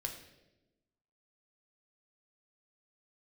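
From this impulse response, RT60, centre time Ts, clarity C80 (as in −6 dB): 1.0 s, 21 ms, 10.0 dB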